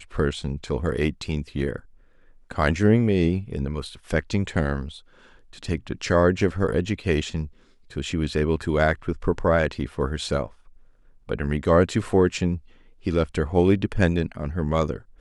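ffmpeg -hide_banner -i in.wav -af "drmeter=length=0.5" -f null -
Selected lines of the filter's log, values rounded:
Channel 1: DR: 11.5
Overall DR: 11.5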